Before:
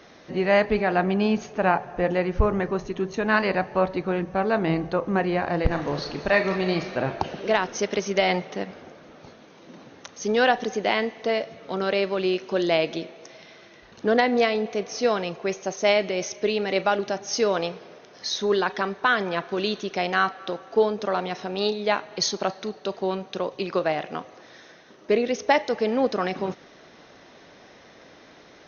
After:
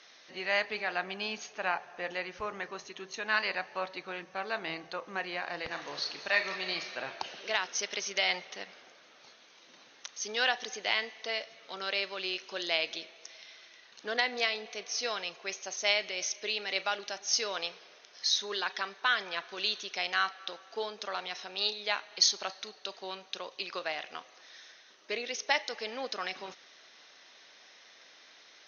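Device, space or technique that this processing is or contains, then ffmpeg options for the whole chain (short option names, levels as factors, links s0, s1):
piezo pickup straight into a mixer: -af "lowpass=5000,aderivative,volume=2.24"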